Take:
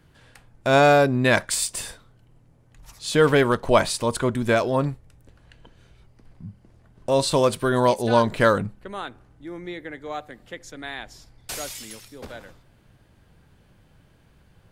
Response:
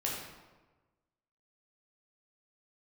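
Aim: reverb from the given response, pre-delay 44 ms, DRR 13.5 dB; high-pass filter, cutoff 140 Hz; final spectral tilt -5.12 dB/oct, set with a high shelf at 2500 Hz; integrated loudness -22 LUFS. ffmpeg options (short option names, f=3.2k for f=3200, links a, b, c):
-filter_complex "[0:a]highpass=140,highshelf=f=2.5k:g=-6,asplit=2[a][b];[1:a]atrim=start_sample=2205,adelay=44[c];[b][c]afir=irnorm=-1:irlink=0,volume=-18dB[d];[a][d]amix=inputs=2:normalize=0,volume=-0.5dB"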